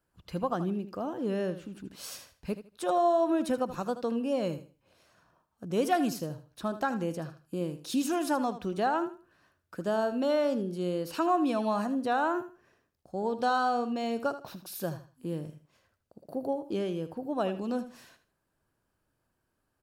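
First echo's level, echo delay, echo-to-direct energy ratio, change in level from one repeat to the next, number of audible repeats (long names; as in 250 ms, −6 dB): −12.5 dB, 78 ms, −12.0 dB, −12.5 dB, 2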